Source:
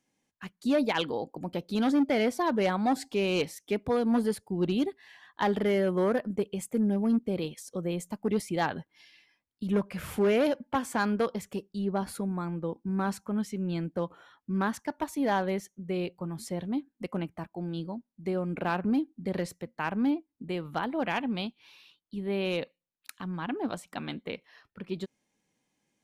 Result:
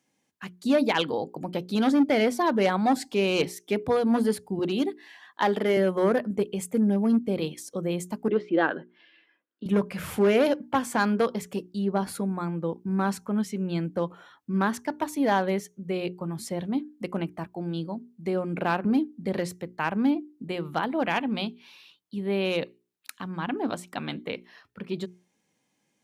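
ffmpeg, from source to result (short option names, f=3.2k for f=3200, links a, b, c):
-filter_complex "[0:a]asettb=1/sr,asplit=3[a][b][c];[a]atrim=end=4.594[d];[b]atrim=start=4.59:end=5.77,asetpts=PTS-STARTPTS,afade=t=in:d=0.004:c=qsin,afade=t=out:st=1.176:d=0.004:c=qsin,highpass=230[e];[c]atrim=start=5.766[f];[d][e]acrossfade=d=0.004:c1=hsin:c2=qsin[g];[g][f]acrossfade=d=0.004:c1=qsin:c2=hsin,asettb=1/sr,asplit=3[h][i][j];[h]atrim=end=8.284[k];[i]atrim=start=8.28:end=9.66,asetpts=PTS-STARTPTS,afade=t=in:d=0.004:c=qsin,afade=t=out:st=1.376:d=0.004:c=qsin,highpass=280,equalizer=f=330:t=q:w=4:g=8,equalizer=f=510:t=q:w=4:g=5,equalizer=f=840:t=q:w=4:g=-6,equalizer=f=1.5k:t=q:w=4:g=7,equalizer=f=2.2k:t=q:w=4:g=-8,lowpass=f=3k:w=0.5412,lowpass=f=3k:w=1.3066[l];[j]atrim=start=9.656[m];[k][l]acrossfade=d=0.004:c1=hsin:c2=qsin[n];[n][m]acrossfade=d=0.004:c1=qsin:c2=hsin,highpass=83,bandreject=f=60:t=h:w=6,bandreject=f=120:t=h:w=6,bandreject=f=180:t=h:w=6,bandreject=f=240:t=h:w=6,bandreject=f=300:t=h:w=6,bandreject=f=360:t=h:w=6,bandreject=f=420:t=h:w=6,volume=4dB"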